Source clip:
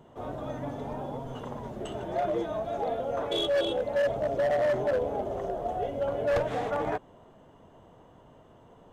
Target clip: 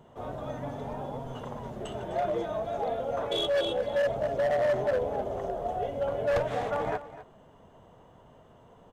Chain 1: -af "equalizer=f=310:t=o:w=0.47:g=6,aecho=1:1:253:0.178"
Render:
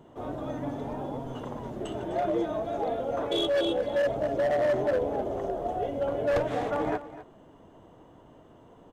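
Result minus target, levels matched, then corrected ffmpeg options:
250 Hz band +5.5 dB
-af "equalizer=f=310:t=o:w=0.47:g=-5,aecho=1:1:253:0.178"

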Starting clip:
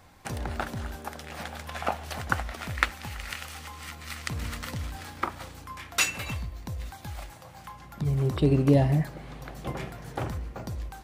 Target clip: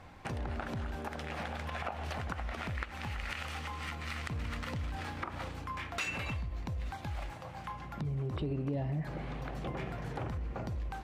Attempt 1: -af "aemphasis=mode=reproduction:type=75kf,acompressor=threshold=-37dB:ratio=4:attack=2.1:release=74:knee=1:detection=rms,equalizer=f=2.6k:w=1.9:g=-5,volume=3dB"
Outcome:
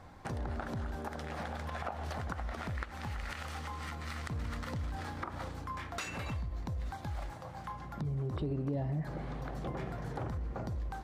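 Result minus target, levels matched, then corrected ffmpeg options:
2000 Hz band -3.0 dB
-af "aemphasis=mode=reproduction:type=75kf,acompressor=threshold=-37dB:ratio=4:attack=2.1:release=74:knee=1:detection=rms,equalizer=f=2.6k:w=1.9:g=3,volume=3dB"

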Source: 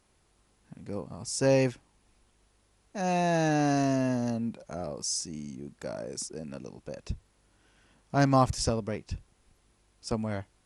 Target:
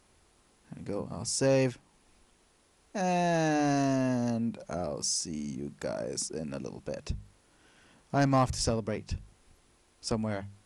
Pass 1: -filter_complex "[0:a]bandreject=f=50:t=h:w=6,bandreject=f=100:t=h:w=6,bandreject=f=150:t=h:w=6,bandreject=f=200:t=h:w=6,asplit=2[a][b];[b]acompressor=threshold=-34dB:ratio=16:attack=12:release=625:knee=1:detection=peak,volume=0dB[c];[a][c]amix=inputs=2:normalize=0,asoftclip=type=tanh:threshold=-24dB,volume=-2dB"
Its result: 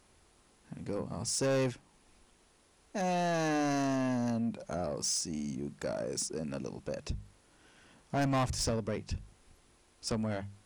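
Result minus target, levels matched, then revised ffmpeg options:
soft clip: distortion +12 dB
-filter_complex "[0:a]bandreject=f=50:t=h:w=6,bandreject=f=100:t=h:w=6,bandreject=f=150:t=h:w=6,bandreject=f=200:t=h:w=6,asplit=2[a][b];[b]acompressor=threshold=-34dB:ratio=16:attack=12:release=625:knee=1:detection=peak,volume=0dB[c];[a][c]amix=inputs=2:normalize=0,asoftclip=type=tanh:threshold=-14dB,volume=-2dB"

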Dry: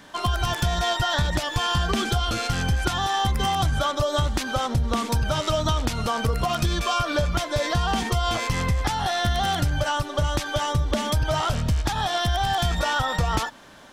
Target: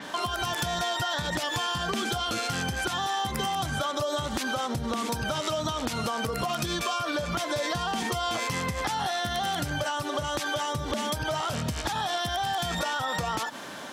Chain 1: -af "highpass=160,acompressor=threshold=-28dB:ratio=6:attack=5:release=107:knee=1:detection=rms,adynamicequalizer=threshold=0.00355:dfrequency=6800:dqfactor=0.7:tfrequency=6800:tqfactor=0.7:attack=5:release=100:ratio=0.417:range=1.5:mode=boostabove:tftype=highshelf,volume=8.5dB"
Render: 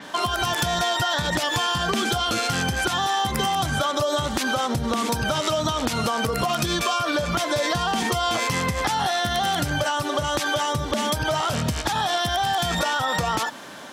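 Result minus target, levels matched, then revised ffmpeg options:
compressor: peak gain reduction -6 dB
-af "highpass=160,acompressor=threshold=-35dB:ratio=6:attack=5:release=107:knee=1:detection=rms,adynamicequalizer=threshold=0.00355:dfrequency=6800:dqfactor=0.7:tfrequency=6800:tqfactor=0.7:attack=5:release=100:ratio=0.417:range=1.5:mode=boostabove:tftype=highshelf,volume=8.5dB"

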